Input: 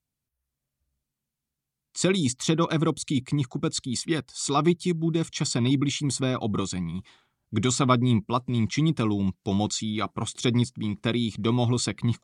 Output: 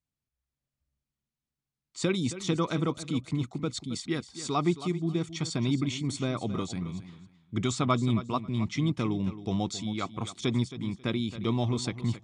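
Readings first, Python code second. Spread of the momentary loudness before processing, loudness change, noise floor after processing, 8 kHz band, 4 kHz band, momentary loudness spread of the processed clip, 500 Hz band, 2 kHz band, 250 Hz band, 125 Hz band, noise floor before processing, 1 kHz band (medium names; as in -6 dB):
6 LU, -4.5 dB, under -85 dBFS, -9.0 dB, -6.0 dB, 6 LU, -4.5 dB, -5.0 dB, -4.5 dB, -4.5 dB, under -85 dBFS, -4.5 dB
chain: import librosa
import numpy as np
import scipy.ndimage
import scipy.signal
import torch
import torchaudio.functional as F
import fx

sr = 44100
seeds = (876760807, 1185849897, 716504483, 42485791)

p1 = fx.air_absorb(x, sr, metres=52.0)
p2 = p1 + fx.echo_feedback(p1, sr, ms=270, feedback_pct=20, wet_db=-13.5, dry=0)
y = F.gain(torch.from_numpy(p2), -4.5).numpy()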